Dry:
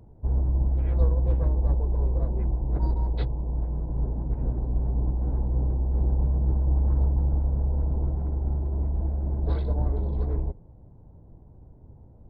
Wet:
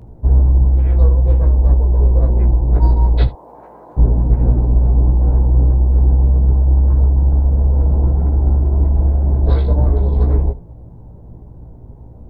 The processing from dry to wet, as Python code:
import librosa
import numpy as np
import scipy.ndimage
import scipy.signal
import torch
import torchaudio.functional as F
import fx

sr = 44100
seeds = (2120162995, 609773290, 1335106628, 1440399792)

p1 = fx.rider(x, sr, range_db=10, speed_s=0.5)
p2 = fx.highpass(p1, sr, hz=810.0, slope=12, at=(3.27, 3.97))
p3 = p2 + fx.room_early_taps(p2, sr, ms=(17, 77), db=(-4.0, -17.5), dry=0)
y = F.gain(torch.from_numpy(p3), 9.0).numpy()